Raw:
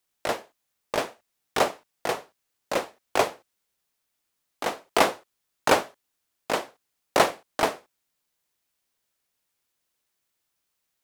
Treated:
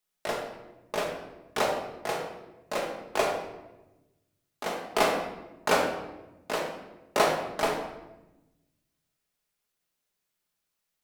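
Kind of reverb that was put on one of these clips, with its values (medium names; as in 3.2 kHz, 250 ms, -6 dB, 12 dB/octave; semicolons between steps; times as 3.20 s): simulated room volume 470 m³, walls mixed, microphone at 1.4 m; trim -6 dB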